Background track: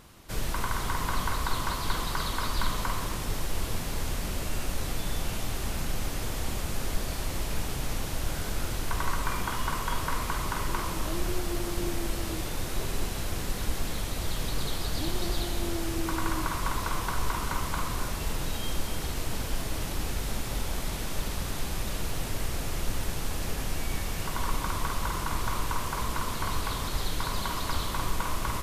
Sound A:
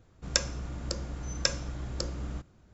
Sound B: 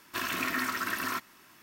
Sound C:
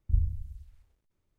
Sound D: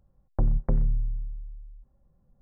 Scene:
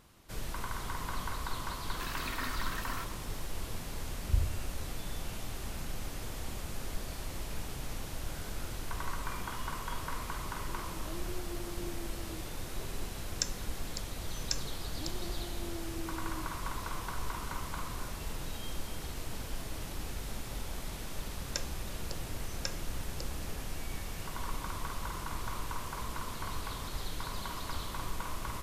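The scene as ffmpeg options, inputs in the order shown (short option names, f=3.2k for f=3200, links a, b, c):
-filter_complex "[1:a]asplit=2[a][b];[0:a]volume=-8dB[c];[a]aemphasis=mode=production:type=riaa[d];[2:a]atrim=end=1.62,asetpts=PTS-STARTPTS,volume=-9.5dB,afade=t=in:d=0.004:c=hsin,afade=t=out:st=1.616:d=0.004:c=hsin,adelay=1850[e];[3:a]atrim=end=1.38,asetpts=PTS-STARTPTS,volume=-3.5dB,afade=t=in:d=0.004:c=hsin,afade=t=out:st=1.376:d=0.004:c=hsin,adelay=4200[f];[d]atrim=end=2.73,asetpts=PTS-STARTPTS,volume=-15.5dB,afade=t=in:d=0.004:c=hsin,afade=t=out:st=2.726:d=0.004:c=hsin,adelay=13060[g];[b]atrim=end=2.73,asetpts=PTS-STARTPTS,volume=-10.5dB,afade=t=in:d=0.004:c=hsin,afade=t=out:st=2.726:d=0.004:c=hsin,adelay=21200[h];[c][e][f][g][h]amix=inputs=5:normalize=0"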